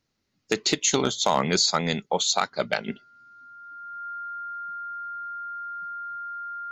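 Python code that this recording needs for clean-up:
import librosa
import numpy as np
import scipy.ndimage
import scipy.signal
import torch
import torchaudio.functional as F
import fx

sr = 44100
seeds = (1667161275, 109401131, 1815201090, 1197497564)

y = fx.fix_declip(x, sr, threshold_db=-10.5)
y = fx.notch(y, sr, hz=1400.0, q=30.0)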